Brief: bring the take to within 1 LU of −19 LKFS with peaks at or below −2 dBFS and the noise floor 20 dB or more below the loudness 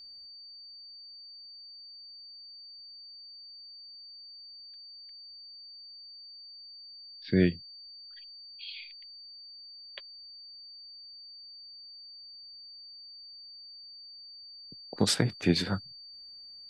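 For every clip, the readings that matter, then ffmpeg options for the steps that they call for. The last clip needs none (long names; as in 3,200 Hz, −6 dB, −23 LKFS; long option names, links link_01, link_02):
interfering tone 4,600 Hz; level of the tone −46 dBFS; integrated loudness −37.5 LKFS; sample peak −10.5 dBFS; target loudness −19.0 LKFS
→ -af "bandreject=frequency=4600:width=30"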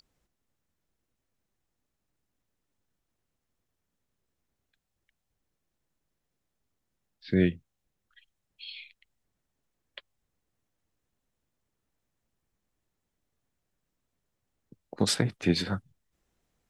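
interfering tone none found; integrated loudness −28.5 LKFS; sample peak −10.5 dBFS; target loudness −19.0 LKFS
→ -af "volume=9.5dB,alimiter=limit=-2dB:level=0:latency=1"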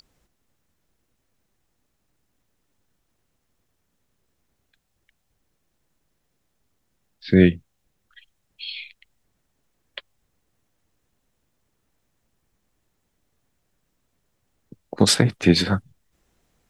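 integrated loudness −19.5 LKFS; sample peak −2.0 dBFS; background noise floor −73 dBFS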